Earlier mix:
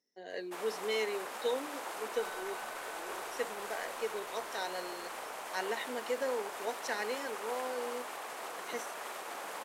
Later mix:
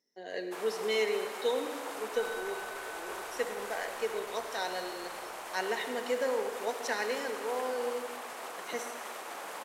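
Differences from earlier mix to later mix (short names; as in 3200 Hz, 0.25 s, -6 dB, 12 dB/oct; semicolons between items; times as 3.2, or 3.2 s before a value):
second sound +6.0 dB; reverb: on, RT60 1.6 s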